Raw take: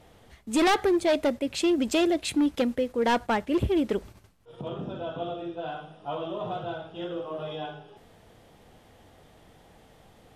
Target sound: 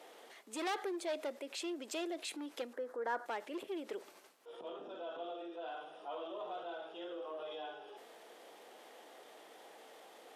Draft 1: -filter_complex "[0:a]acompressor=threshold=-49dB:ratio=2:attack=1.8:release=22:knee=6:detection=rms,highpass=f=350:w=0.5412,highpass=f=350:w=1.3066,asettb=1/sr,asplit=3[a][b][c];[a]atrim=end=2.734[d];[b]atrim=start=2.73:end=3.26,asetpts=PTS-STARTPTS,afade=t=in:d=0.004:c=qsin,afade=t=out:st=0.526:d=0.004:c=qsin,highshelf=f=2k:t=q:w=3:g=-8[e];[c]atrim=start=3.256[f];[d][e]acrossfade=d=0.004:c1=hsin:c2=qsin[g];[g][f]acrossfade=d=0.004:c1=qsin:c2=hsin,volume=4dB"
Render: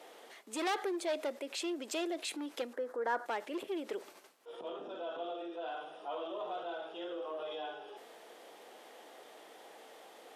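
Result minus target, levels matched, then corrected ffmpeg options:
compressor: peak gain reduction -3.5 dB
-filter_complex "[0:a]acompressor=threshold=-56dB:ratio=2:attack=1.8:release=22:knee=6:detection=rms,highpass=f=350:w=0.5412,highpass=f=350:w=1.3066,asettb=1/sr,asplit=3[a][b][c];[a]atrim=end=2.734[d];[b]atrim=start=2.73:end=3.26,asetpts=PTS-STARTPTS,afade=t=in:d=0.004:c=qsin,afade=t=out:st=0.526:d=0.004:c=qsin,highshelf=f=2k:t=q:w=3:g=-8[e];[c]atrim=start=3.256[f];[d][e]acrossfade=d=0.004:c1=hsin:c2=qsin[g];[g][f]acrossfade=d=0.004:c1=qsin:c2=hsin,volume=4dB"

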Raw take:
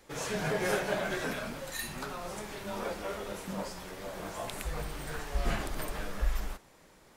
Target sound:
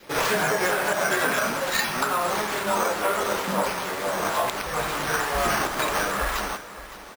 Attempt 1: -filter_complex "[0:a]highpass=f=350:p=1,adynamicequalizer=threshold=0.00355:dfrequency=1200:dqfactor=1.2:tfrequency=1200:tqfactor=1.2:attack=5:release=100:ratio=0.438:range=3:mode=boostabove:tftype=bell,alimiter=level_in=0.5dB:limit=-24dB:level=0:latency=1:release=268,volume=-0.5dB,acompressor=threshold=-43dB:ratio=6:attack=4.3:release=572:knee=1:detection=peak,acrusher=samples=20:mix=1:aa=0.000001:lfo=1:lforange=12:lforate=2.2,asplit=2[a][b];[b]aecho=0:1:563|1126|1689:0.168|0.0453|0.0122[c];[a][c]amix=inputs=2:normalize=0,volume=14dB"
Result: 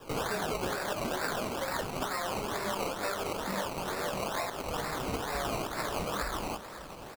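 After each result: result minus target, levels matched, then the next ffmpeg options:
compressor: peak gain reduction +10 dB; decimation with a swept rate: distortion +15 dB
-filter_complex "[0:a]highpass=f=350:p=1,adynamicequalizer=threshold=0.00355:dfrequency=1200:dqfactor=1.2:tfrequency=1200:tqfactor=1.2:attack=5:release=100:ratio=0.438:range=3:mode=boostabove:tftype=bell,alimiter=level_in=0.5dB:limit=-24dB:level=0:latency=1:release=268,volume=-0.5dB,acompressor=threshold=-31dB:ratio=6:attack=4.3:release=572:knee=1:detection=peak,acrusher=samples=20:mix=1:aa=0.000001:lfo=1:lforange=12:lforate=2.2,asplit=2[a][b];[b]aecho=0:1:563|1126|1689:0.168|0.0453|0.0122[c];[a][c]amix=inputs=2:normalize=0,volume=14dB"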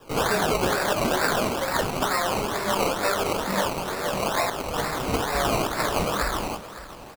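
decimation with a swept rate: distortion +15 dB
-filter_complex "[0:a]highpass=f=350:p=1,adynamicequalizer=threshold=0.00355:dfrequency=1200:dqfactor=1.2:tfrequency=1200:tqfactor=1.2:attack=5:release=100:ratio=0.438:range=3:mode=boostabove:tftype=bell,alimiter=level_in=0.5dB:limit=-24dB:level=0:latency=1:release=268,volume=-0.5dB,acompressor=threshold=-31dB:ratio=6:attack=4.3:release=572:knee=1:detection=peak,acrusher=samples=5:mix=1:aa=0.000001:lfo=1:lforange=3:lforate=2.2,asplit=2[a][b];[b]aecho=0:1:563|1126|1689:0.168|0.0453|0.0122[c];[a][c]amix=inputs=2:normalize=0,volume=14dB"

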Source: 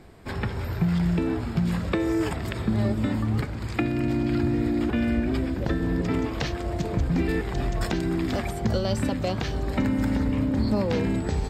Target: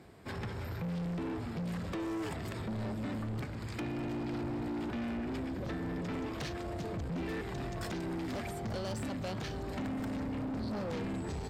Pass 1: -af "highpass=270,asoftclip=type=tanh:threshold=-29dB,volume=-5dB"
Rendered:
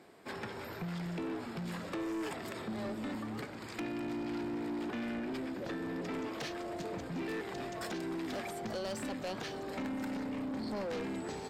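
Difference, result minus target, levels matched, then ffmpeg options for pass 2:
125 Hz band -6.5 dB
-af "highpass=80,asoftclip=type=tanh:threshold=-29dB,volume=-5dB"

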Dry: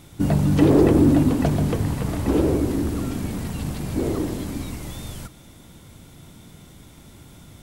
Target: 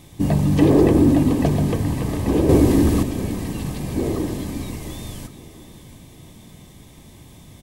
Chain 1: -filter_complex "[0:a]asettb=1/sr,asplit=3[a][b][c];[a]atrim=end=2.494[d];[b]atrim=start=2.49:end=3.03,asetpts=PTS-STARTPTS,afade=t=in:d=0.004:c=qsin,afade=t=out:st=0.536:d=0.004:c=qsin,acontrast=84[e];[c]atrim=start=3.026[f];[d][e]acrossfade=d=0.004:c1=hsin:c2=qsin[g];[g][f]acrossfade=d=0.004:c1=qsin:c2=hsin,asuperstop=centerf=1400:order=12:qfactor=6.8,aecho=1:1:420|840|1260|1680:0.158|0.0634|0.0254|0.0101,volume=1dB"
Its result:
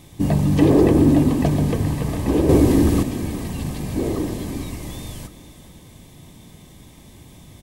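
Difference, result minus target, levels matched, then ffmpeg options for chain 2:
echo 0.269 s early
-filter_complex "[0:a]asettb=1/sr,asplit=3[a][b][c];[a]atrim=end=2.494[d];[b]atrim=start=2.49:end=3.03,asetpts=PTS-STARTPTS,afade=t=in:d=0.004:c=qsin,afade=t=out:st=0.536:d=0.004:c=qsin,acontrast=84[e];[c]atrim=start=3.026[f];[d][e]acrossfade=d=0.004:c1=hsin:c2=qsin[g];[g][f]acrossfade=d=0.004:c1=qsin:c2=hsin,asuperstop=centerf=1400:order=12:qfactor=6.8,aecho=1:1:689|1378|2067|2756:0.158|0.0634|0.0254|0.0101,volume=1dB"

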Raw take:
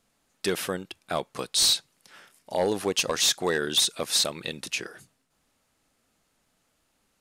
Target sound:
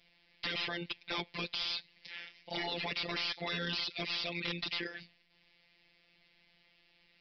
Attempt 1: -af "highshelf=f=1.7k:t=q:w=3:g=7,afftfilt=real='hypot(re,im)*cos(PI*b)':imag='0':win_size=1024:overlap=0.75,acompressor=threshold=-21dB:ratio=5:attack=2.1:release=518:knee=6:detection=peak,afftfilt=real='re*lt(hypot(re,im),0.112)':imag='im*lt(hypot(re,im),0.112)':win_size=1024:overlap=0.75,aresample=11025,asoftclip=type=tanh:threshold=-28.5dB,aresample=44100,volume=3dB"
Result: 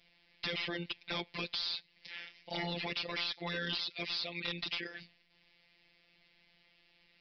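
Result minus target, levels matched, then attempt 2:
compressor: peak gain reduction +6 dB
-af "highshelf=f=1.7k:t=q:w=3:g=7,afftfilt=real='hypot(re,im)*cos(PI*b)':imag='0':win_size=1024:overlap=0.75,acompressor=threshold=-13.5dB:ratio=5:attack=2.1:release=518:knee=6:detection=peak,afftfilt=real='re*lt(hypot(re,im),0.112)':imag='im*lt(hypot(re,im),0.112)':win_size=1024:overlap=0.75,aresample=11025,asoftclip=type=tanh:threshold=-28.5dB,aresample=44100,volume=3dB"

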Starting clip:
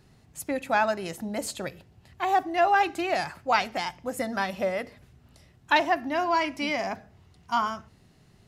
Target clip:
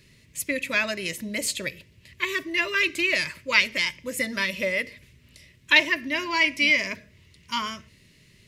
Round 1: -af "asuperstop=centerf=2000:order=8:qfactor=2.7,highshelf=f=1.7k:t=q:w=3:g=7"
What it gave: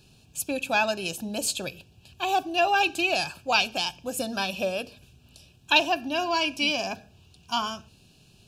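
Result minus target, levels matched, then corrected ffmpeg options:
1000 Hz band +9.5 dB
-af "asuperstop=centerf=770:order=8:qfactor=2.7,highshelf=f=1.7k:t=q:w=3:g=7"

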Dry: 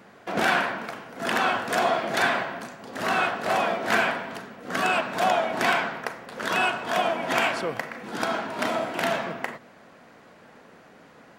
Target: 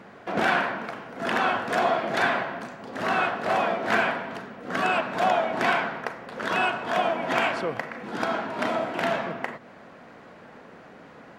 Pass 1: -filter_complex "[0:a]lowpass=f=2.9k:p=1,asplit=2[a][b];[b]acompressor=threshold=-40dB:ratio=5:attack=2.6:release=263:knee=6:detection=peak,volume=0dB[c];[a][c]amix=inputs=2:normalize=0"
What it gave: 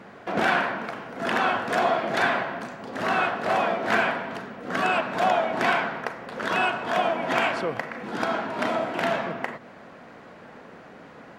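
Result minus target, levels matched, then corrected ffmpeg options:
compressor: peak gain reduction -7.5 dB
-filter_complex "[0:a]lowpass=f=2.9k:p=1,asplit=2[a][b];[b]acompressor=threshold=-49.5dB:ratio=5:attack=2.6:release=263:knee=6:detection=peak,volume=0dB[c];[a][c]amix=inputs=2:normalize=0"

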